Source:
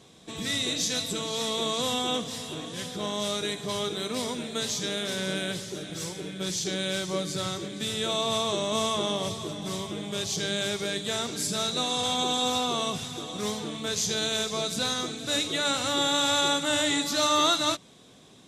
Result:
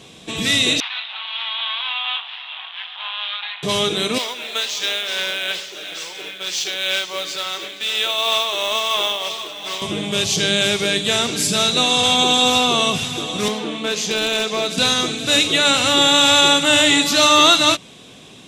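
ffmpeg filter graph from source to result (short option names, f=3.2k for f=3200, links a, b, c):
-filter_complex "[0:a]asettb=1/sr,asplit=3[a][b][c];[a]atrim=end=0.804[d];[b]atrim=start=0.8:end=3.63,asetpts=PTS-STARTPTS,afade=t=in:d=0.004:c=qsin,afade=t=out:st=2.826:d=0.004:c=qsin,aeval=exprs='max(val(0),0)':c=same,asuperpass=centerf=1700:order=12:qfactor=0.6[e];[c]atrim=start=3.626[f];[d][e]acrossfade=d=0.004:c1=hsin:c2=qsin[g];[g][f]acrossfade=d=0.004:c1=qsin:c2=hsin,asettb=1/sr,asplit=3[h][i][j];[h]atrim=end=4.184[k];[i]atrim=start=4.18:end=9.82,asetpts=PTS-STARTPTS,afade=t=in:d=0.004:c=qsin,afade=t=out:st=5.636:d=0.004:c=qsin,highpass=700,lowpass=5.5k,tremolo=f=2.9:d=0.36,acrusher=bits=3:mode=log:mix=0:aa=0.000001[l];[j]atrim=start=9.816[m];[k][l]acrossfade=d=0.004:c1=hsin:c2=qsin[n];[n][m]acrossfade=d=0.004:c1=qsin:c2=hsin,asettb=1/sr,asplit=3[o][p][q];[o]atrim=end=13.484[r];[p]atrim=start=13.48:end=14.78,asetpts=PTS-STARTPTS,afade=t=in:d=0.004:c=qsin,afade=t=out:st=1.296:d=0.004:c=qsin,highpass=f=200:w=0.5412,highpass=f=200:w=1.3066,highshelf=f=4.4k:g=-11,aeval=exprs='0.0631*(abs(mod(val(0)/0.0631+3,4)-2)-1)':c=same[s];[q]atrim=start=14.776[t];[r][s]acrossfade=d=0.004:c1=hsin:c2=qsin[u];[u][t]acrossfade=d=0.004:c1=qsin:c2=hsin,acontrast=90,equalizer=f=2.7k:w=2.6:g=8.5,volume=2.5dB"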